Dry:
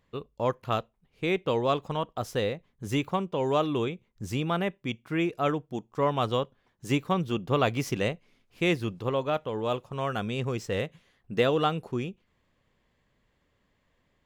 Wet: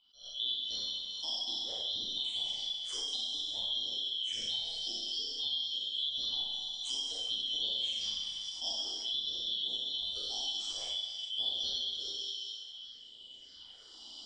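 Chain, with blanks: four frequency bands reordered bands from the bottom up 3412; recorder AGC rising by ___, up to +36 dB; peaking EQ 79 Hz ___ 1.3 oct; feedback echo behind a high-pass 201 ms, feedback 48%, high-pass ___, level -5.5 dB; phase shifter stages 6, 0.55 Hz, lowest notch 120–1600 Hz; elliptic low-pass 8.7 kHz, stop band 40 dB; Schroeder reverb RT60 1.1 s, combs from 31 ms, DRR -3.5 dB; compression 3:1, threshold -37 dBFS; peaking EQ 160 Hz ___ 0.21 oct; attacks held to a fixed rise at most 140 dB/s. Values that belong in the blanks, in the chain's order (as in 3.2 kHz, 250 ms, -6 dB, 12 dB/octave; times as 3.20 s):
8.6 dB/s, -4.5 dB, 2.5 kHz, -12 dB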